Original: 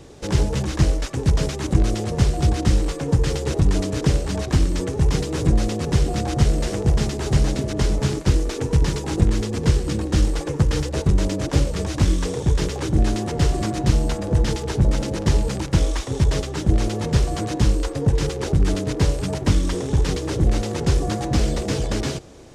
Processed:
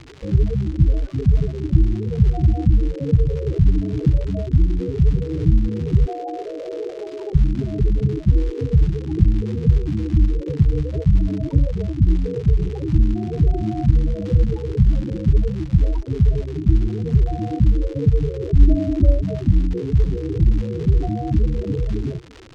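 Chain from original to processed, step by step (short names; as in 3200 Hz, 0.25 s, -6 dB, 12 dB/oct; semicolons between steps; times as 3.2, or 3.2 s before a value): 6.06–7.35 HPF 350 Hz 24 dB/oct; 18.56–19.23 comb 3.4 ms, depth 95%; loudest bins only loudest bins 8; crackle 220/s -28 dBFS; air absorption 130 m; gain +3 dB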